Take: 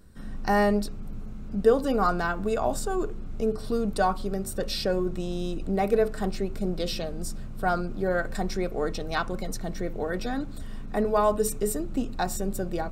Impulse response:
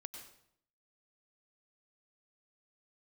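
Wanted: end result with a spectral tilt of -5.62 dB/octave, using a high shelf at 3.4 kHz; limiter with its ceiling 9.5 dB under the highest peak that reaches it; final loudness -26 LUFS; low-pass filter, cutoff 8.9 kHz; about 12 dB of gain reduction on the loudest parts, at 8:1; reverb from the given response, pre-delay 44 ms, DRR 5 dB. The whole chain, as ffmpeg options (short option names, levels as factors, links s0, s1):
-filter_complex "[0:a]lowpass=8900,highshelf=f=3400:g=-5,acompressor=threshold=0.0501:ratio=8,alimiter=level_in=1.26:limit=0.0631:level=0:latency=1,volume=0.794,asplit=2[s0][s1];[1:a]atrim=start_sample=2205,adelay=44[s2];[s1][s2]afir=irnorm=-1:irlink=0,volume=0.891[s3];[s0][s3]amix=inputs=2:normalize=0,volume=2.99"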